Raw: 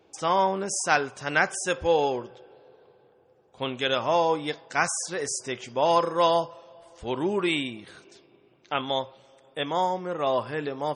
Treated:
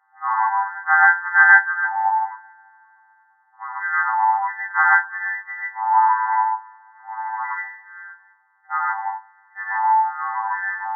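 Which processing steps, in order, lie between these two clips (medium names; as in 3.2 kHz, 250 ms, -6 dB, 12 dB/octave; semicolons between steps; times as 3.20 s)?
partials quantised in pitch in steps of 2 st; gated-style reverb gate 170 ms rising, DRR -6 dB; FFT band-pass 770–2100 Hz; trim +3 dB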